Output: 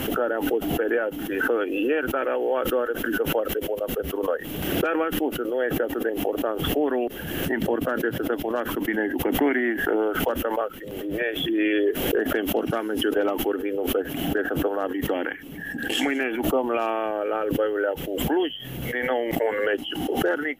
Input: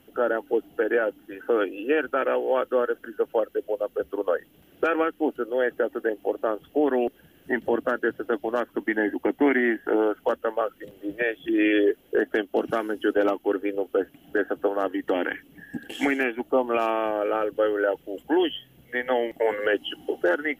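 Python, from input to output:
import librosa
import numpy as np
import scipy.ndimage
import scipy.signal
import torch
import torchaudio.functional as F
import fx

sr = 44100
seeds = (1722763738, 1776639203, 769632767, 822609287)

y = fx.pre_swell(x, sr, db_per_s=34.0)
y = y * 10.0 ** (-1.5 / 20.0)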